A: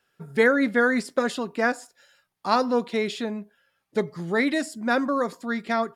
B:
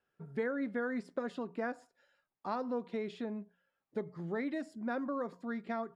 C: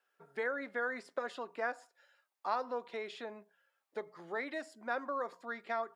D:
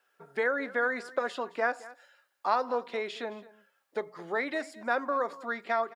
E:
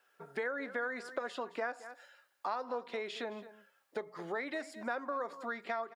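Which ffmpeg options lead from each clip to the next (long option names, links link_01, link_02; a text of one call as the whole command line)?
ffmpeg -i in.wav -af "lowpass=frequency=1100:poles=1,bandreject=frequency=60:width_type=h:width=6,bandreject=frequency=120:width_type=h:width=6,bandreject=frequency=180:width_type=h:width=6,acompressor=threshold=-27dB:ratio=2.5,volume=-7.5dB" out.wav
ffmpeg -i in.wav -af "highpass=640,volume=4.5dB" out.wav
ffmpeg -i in.wav -af "aecho=1:1:217:0.112,volume=7.5dB" out.wav
ffmpeg -i in.wav -af "acompressor=threshold=-39dB:ratio=2.5,volume=1dB" out.wav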